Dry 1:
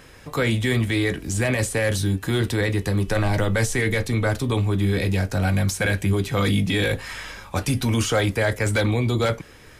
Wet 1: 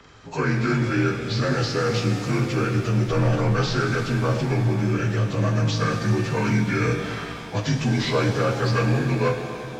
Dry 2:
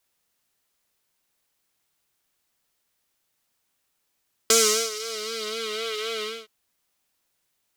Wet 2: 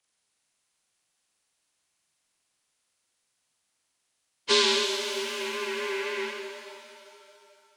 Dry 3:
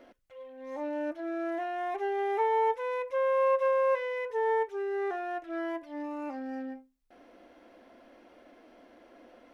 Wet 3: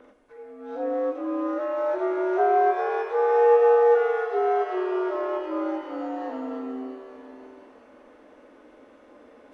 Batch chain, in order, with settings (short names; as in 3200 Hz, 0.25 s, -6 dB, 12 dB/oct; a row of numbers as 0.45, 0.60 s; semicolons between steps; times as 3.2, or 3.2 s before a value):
inharmonic rescaling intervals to 84%; shimmer reverb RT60 2.6 s, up +7 st, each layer -8 dB, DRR 5 dB; normalise peaks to -9 dBFS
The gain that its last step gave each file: -0.5, -2.0, +6.0 dB